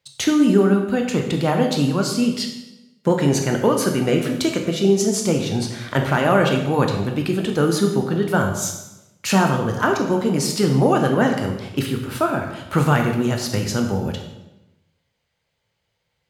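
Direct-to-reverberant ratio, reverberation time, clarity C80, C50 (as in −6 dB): 3.0 dB, 0.95 s, 8.0 dB, 6.0 dB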